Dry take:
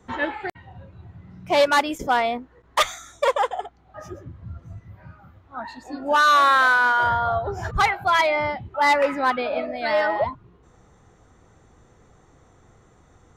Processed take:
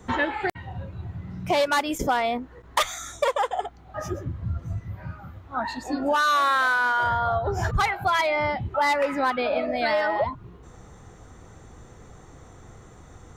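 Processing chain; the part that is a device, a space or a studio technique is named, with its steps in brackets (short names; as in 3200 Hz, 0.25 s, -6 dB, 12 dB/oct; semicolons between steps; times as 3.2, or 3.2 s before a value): ASMR close-microphone chain (low shelf 140 Hz +3.5 dB; compressor 4:1, threshold -28 dBFS, peak gain reduction 12 dB; high shelf 6800 Hz +5 dB); gain +6 dB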